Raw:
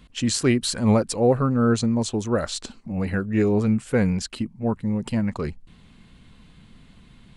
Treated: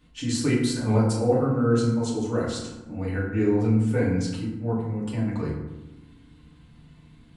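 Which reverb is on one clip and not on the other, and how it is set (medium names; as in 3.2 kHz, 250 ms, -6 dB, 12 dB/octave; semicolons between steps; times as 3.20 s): FDN reverb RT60 1 s, low-frequency decay 1.5×, high-frequency decay 0.5×, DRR -7 dB; trim -11.5 dB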